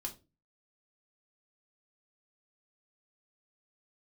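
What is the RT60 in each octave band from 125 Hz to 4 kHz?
0.50 s, 0.40 s, 0.35 s, 0.25 s, 0.20 s, 0.20 s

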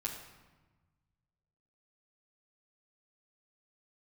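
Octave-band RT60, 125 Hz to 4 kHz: 2.3 s, 1.7 s, 1.2 s, 1.2 s, 1.1 s, 0.85 s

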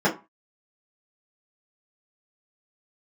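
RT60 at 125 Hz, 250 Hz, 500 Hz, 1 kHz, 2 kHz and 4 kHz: 0.30 s, 0.25 s, 0.25 s, 0.35 s, 0.25 s, 0.15 s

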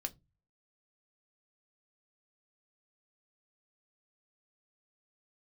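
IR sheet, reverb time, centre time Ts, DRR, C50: 0.20 s, 4 ms, 5.5 dB, 24.5 dB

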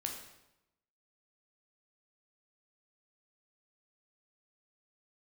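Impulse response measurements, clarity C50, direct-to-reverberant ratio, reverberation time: 5.0 dB, 1.0 dB, 0.90 s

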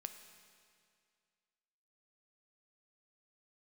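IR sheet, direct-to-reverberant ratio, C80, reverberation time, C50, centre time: 7.0 dB, 9.5 dB, 2.2 s, 8.5 dB, 27 ms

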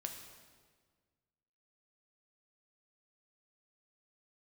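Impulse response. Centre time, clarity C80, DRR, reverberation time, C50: 35 ms, 7.5 dB, 3.5 dB, 1.6 s, 6.0 dB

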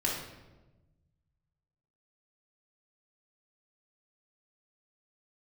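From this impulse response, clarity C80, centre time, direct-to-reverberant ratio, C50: 5.5 dB, 55 ms, -4.0 dB, 2.0 dB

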